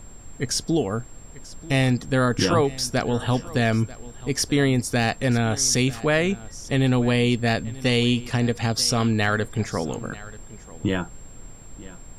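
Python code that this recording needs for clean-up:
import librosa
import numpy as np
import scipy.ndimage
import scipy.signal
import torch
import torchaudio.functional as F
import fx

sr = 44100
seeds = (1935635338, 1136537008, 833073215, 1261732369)

y = fx.fix_declip(x, sr, threshold_db=-8.5)
y = fx.notch(y, sr, hz=7500.0, q=30.0)
y = fx.noise_reduce(y, sr, print_start_s=11.19, print_end_s=11.69, reduce_db=28.0)
y = fx.fix_echo_inverse(y, sr, delay_ms=938, level_db=-19.0)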